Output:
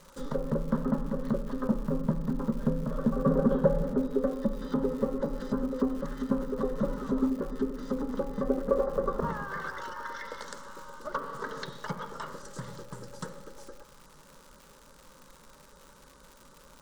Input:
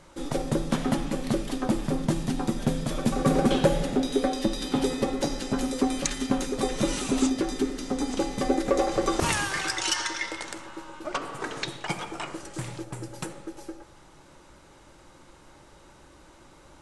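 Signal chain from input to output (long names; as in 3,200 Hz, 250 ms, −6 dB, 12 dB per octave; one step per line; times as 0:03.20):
treble cut that deepens with the level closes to 1,100 Hz, closed at −24 dBFS
phaser with its sweep stopped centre 490 Hz, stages 8
surface crackle 240 per second −42 dBFS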